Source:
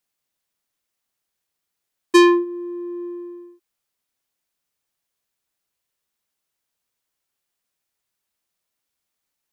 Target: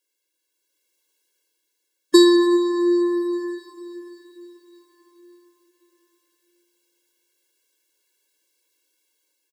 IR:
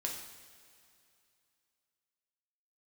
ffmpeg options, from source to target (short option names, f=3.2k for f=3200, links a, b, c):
-filter_complex "[0:a]aecho=1:1:105|210|315|420:0.211|0.0845|0.0338|0.0135,asplit=2[a][b];[1:a]atrim=start_sample=2205,asetrate=25578,aresample=44100[c];[b][c]afir=irnorm=-1:irlink=0,volume=-7.5dB[d];[a][d]amix=inputs=2:normalize=0,acrossover=split=190|3000[e][f][g];[f]acompressor=threshold=-15dB:ratio=6[h];[e][h][g]amix=inputs=3:normalize=0,equalizer=f=1.1k:w=1.9:g=-8.5,dynaudnorm=f=140:g=11:m=7dB,afftfilt=real='re*eq(mod(floor(b*sr/1024/290),2),1)':imag='im*eq(mod(floor(b*sr/1024/290),2),1)':win_size=1024:overlap=0.75,volume=2.5dB"